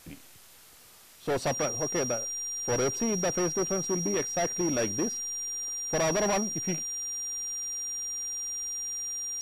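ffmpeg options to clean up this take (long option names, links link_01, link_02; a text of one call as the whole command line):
ffmpeg -i in.wav -af "bandreject=frequency=5700:width=30,afwtdn=0.0022" out.wav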